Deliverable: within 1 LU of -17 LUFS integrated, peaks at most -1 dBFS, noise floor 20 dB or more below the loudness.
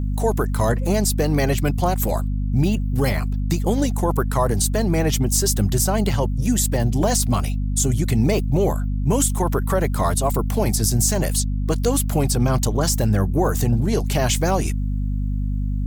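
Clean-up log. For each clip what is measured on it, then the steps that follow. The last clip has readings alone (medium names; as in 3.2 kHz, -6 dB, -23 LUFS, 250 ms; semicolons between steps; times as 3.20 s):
hum 50 Hz; highest harmonic 250 Hz; hum level -20 dBFS; loudness -20.5 LUFS; peak level -6.5 dBFS; loudness target -17.0 LUFS
-> hum notches 50/100/150/200/250 Hz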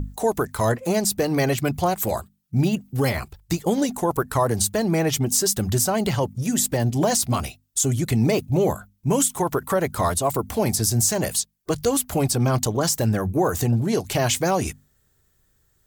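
hum not found; loudness -22.5 LUFS; peak level -9.0 dBFS; loudness target -17.0 LUFS
-> trim +5.5 dB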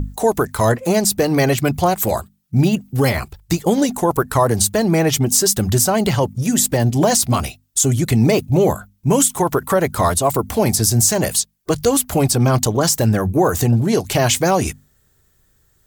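loudness -17.0 LUFS; peak level -3.5 dBFS; noise floor -60 dBFS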